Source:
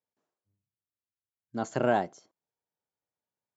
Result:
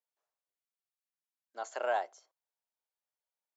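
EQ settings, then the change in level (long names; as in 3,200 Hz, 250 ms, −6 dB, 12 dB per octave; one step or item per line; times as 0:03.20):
high-pass filter 550 Hz 24 dB per octave
−4.0 dB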